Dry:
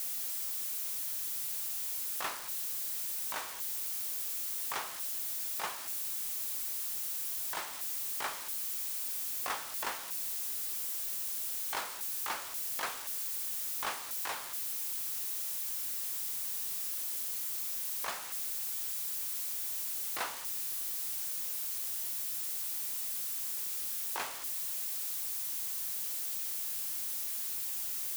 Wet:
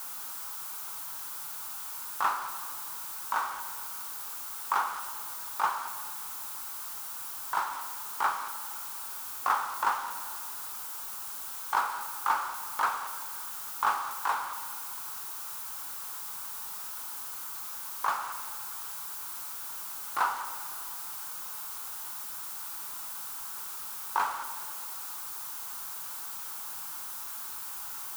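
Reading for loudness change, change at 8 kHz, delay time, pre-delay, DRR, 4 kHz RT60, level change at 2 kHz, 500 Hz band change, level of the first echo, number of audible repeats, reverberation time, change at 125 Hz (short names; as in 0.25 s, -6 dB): 0.0 dB, -3.0 dB, none, 5 ms, 8.0 dB, 2.1 s, +6.0 dB, +1.5 dB, none, none, 2.3 s, n/a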